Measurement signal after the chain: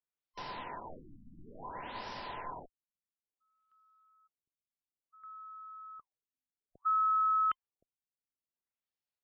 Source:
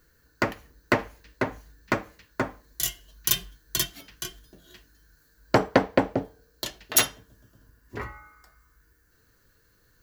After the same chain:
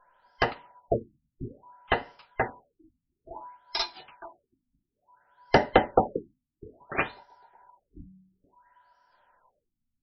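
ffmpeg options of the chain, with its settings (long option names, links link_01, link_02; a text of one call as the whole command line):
ffmpeg -i in.wav -af "afftfilt=real='real(if(between(b,1,1008),(2*floor((b-1)/48)+1)*48-b,b),0)':imag='imag(if(between(b,1,1008),(2*floor((b-1)/48)+1)*48-b,b),0)*if(between(b,1,1008),-1,1)':win_size=2048:overlap=0.75,afftfilt=real='re*lt(b*sr/1024,280*pow(5900/280,0.5+0.5*sin(2*PI*0.58*pts/sr)))':imag='im*lt(b*sr/1024,280*pow(5900/280,0.5+0.5*sin(2*PI*0.58*pts/sr)))':win_size=1024:overlap=0.75" out.wav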